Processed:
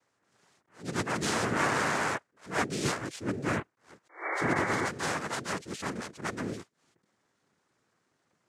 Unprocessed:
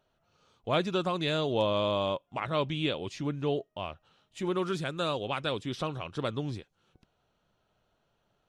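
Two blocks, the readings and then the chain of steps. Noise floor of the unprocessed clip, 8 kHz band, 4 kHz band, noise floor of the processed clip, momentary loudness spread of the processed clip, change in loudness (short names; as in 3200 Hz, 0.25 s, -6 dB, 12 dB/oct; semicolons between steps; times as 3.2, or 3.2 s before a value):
-75 dBFS, +14.5 dB, -4.0 dB, -77 dBFS, 10 LU, 0.0 dB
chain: noise vocoder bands 3; painted sound noise, 4.09–4.89, 300–2300 Hz -32 dBFS; attack slew limiter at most 180 dB/s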